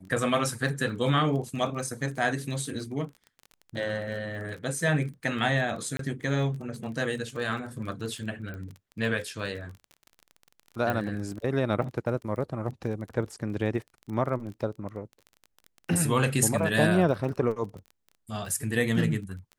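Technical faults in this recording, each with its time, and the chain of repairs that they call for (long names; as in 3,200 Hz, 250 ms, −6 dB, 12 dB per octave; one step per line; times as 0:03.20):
surface crackle 24 per second −37 dBFS
0:05.97–0:05.99: drop-out 23 ms
0:08.54: click −28 dBFS
0:10.90: click −16 dBFS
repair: click removal
repair the gap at 0:05.97, 23 ms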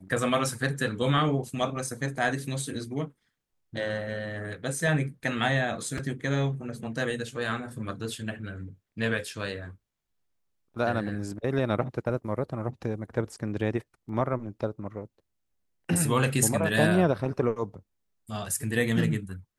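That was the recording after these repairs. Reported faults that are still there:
0:08.54: click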